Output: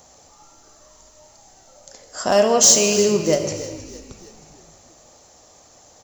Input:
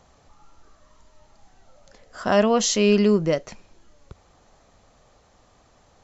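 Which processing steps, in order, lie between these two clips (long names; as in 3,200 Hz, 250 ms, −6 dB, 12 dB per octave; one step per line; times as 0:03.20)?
in parallel at −2.5 dB: downward compressor, threshold −28 dBFS, peak gain reduction 14.5 dB
on the sum: spectral tilt +3 dB per octave
gain into a clipping stage and back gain 10 dB
flat-topped bell 2,100 Hz −8.5 dB 2.3 octaves
on a send: echo with shifted repeats 313 ms, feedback 51%, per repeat −51 Hz, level −16 dB
on the sum: reverb whose tail is shaped and stops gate 450 ms falling, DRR 5 dB
level +3.5 dB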